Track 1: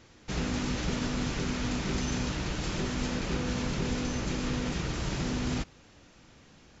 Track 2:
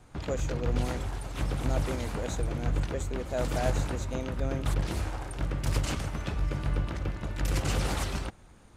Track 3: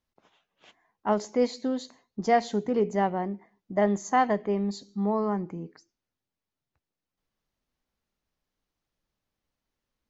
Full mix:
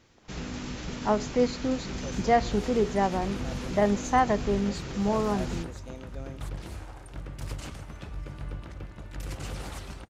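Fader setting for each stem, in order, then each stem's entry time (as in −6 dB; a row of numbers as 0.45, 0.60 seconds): −5.0, −8.0, 0.0 decibels; 0.00, 1.75, 0.00 seconds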